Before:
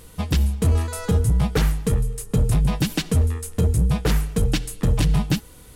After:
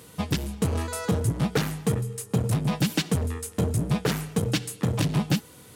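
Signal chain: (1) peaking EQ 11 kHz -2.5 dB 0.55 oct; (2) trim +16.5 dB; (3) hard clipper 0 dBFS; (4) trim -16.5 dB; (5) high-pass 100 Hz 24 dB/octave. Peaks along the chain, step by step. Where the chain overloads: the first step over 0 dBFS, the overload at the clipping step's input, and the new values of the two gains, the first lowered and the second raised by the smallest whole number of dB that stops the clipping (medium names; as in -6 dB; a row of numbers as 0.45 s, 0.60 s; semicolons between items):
-11.0 dBFS, +5.5 dBFS, 0.0 dBFS, -16.5 dBFS, -10.0 dBFS; step 2, 5.5 dB; step 2 +10.5 dB, step 4 -10.5 dB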